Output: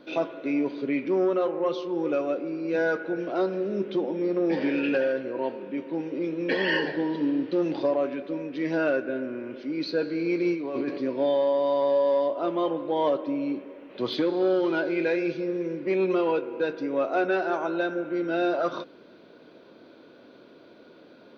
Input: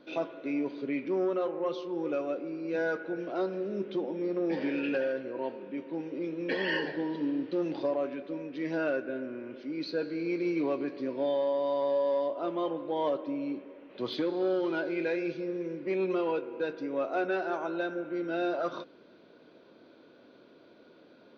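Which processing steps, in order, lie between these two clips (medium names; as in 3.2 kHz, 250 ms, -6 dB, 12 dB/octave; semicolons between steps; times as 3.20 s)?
10.53–10.98 s: compressor with a negative ratio -35 dBFS, ratio -1; trim +5.5 dB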